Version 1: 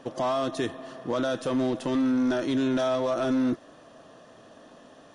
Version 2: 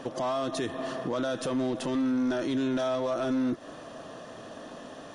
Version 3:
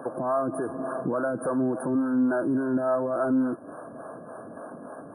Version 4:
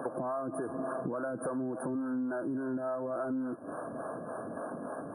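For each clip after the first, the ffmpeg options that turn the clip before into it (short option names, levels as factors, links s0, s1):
-af "alimiter=level_in=2.11:limit=0.0631:level=0:latency=1:release=147,volume=0.473,volume=2.37"
-filter_complex "[0:a]afftfilt=real='re*(1-between(b*sr/4096,1700,8900))':imag='im*(1-between(b*sr/4096,1700,8900))':win_size=4096:overlap=0.75,acrossover=split=410[s0][s1];[s0]aeval=exprs='val(0)*(1-0.7/2+0.7/2*cos(2*PI*3.5*n/s))':c=same[s2];[s1]aeval=exprs='val(0)*(1-0.7/2-0.7/2*cos(2*PI*3.5*n/s))':c=same[s3];[s2][s3]amix=inputs=2:normalize=0,highpass=110,volume=2.11"
-af "acompressor=threshold=0.02:ratio=6,volume=1.19"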